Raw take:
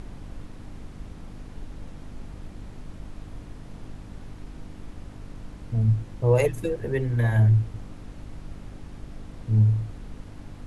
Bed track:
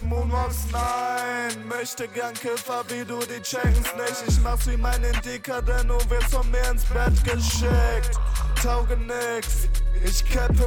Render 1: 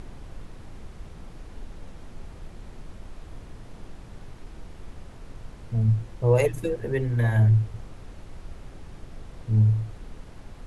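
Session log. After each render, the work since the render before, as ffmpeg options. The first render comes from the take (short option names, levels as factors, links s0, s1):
-af "bandreject=f=50:t=h:w=4,bandreject=f=100:t=h:w=4,bandreject=f=150:t=h:w=4,bandreject=f=200:t=h:w=4,bandreject=f=250:t=h:w=4,bandreject=f=300:t=h:w=4"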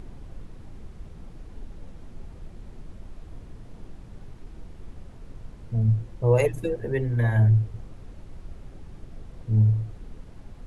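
-af "afftdn=nr=6:nf=-45"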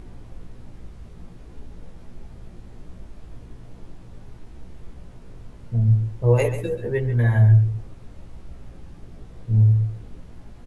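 -filter_complex "[0:a]asplit=2[s0][s1];[s1]adelay=17,volume=0.631[s2];[s0][s2]amix=inputs=2:normalize=0,aecho=1:1:137:0.266"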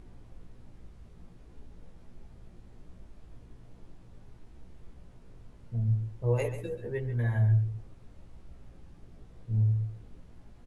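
-af "volume=0.316"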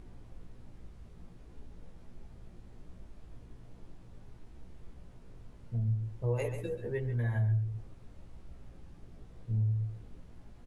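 -af "acompressor=threshold=0.0316:ratio=2"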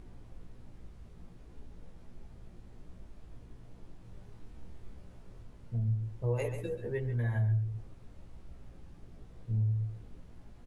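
-filter_complex "[0:a]asettb=1/sr,asplit=3[s0][s1][s2];[s0]atrim=end=4.024[s3];[s1]atrim=start=4.02:end=5.43,asetpts=PTS-STARTPTS,afade=t=in:d=0.004:c=qsin,afade=t=out:st=1.406:d=0.004:c=qsin,asplit=2[s4][s5];[s5]adelay=27,volume=0.631[s6];[s4][s6]amix=inputs=2:normalize=0,atrim=end_sample=62181[s7];[s2]atrim=start=5.426[s8];[s3][s7]acrossfade=d=0.004:c1=hsin:c2=qsin[s9];[s9][s8]acrossfade=d=0.004:c1=qsin:c2=hsin"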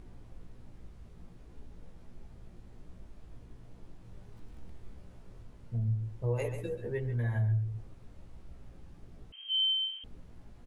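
-filter_complex "[0:a]asettb=1/sr,asplit=3[s0][s1][s2];[s0]atrim=end=4.364[s3];[s1]atrim=start=4.36:end=4.78,asetpts=PTS-STARTPTS,afade=t=in:d=0.004:c=qsin,afade=t=out:st=0.416:d=0.004:c=qsin,aeval=exprs='val(0)+0.5*0.00112*sgn(val(0))':c=same[s4];[s2]atrim=start=4.776[s5];[s3][s4]acrossfade=d=0.004:c1=hsin:c2=qsin[s6];[s6][s5]acrossfade=d=0.004:c1=qsin:c2=hsin,asettb=1/sr,asplit=3[s7][s8][s9];[s7]atrim=end=9.324[s10];[s8]atrim=start=9.32:end=10.04,asetpts=PTS-STARTPTS,afade=t=in:d=0.004:c=qsin,afade=t=out:st=0.716:d=0.004:c=qsin,lowpass=f=2700:t=q:w=0.5098,lowpass=f=2700:t=q:w=0.6013,lowpass=f=2700:t=q:w=0.9,lowpass=f=2700:t=q:w=2.563,afreqshift=-3200[s11];[s9]atrim=start=10.036[s12];[s10][s11]acrossfade=d=0.004:c1=hsin:c2=qsin[s13];[s13][s12]acrossfade=d=0.004:c1=qsin:c2=hsin"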